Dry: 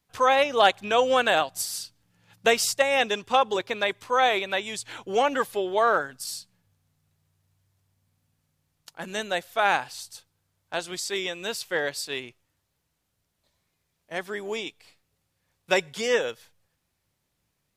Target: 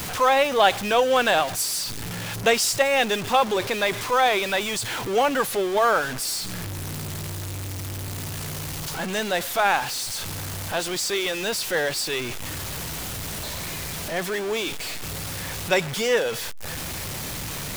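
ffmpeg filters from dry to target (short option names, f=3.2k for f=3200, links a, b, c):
-af "aeval=exprs='val(0)+0.5*0.0531*sgn(val(0))':c=same"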